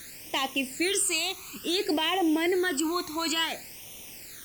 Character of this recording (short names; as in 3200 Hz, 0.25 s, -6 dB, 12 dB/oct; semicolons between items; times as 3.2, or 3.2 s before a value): a quantiser's noise floor 8-bit, dither triangular; phasing stages 12, 0.57 Hz, lowest notch 530–1500 Hz; Opus